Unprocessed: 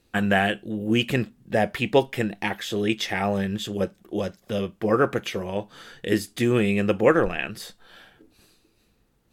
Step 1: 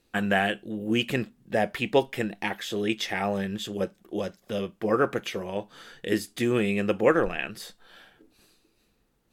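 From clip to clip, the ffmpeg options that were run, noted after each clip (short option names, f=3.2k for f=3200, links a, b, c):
-af "equalizer=f=84:w=0.82:g=-5.5,volume=-2.5dB"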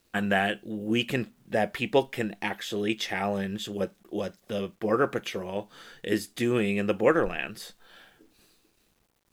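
-af "acrusher=bits=10:mix=0:aa=0.000001,volume=-1dB"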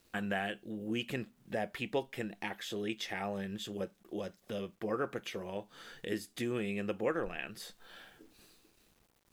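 -af "acompressor=threshold=-50dB:ratio=1.5"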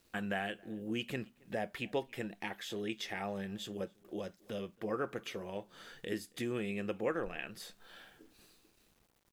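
-filter_complex "[0:a]asplit=2[a][b];[b]adelay=274.1,volume=-26dB,highshelf=f=4k:g=-6.17[c];[a][c]amix=inputs=2:normalize=0,volume=-1.5dB"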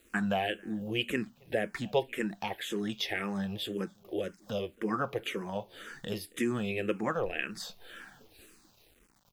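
-filter_complex "[0:a]asplit=2[a][b];[b]afreqshift=-1.9[c];[a][c]amix=inputs=2:normalize=1,volume=9dB"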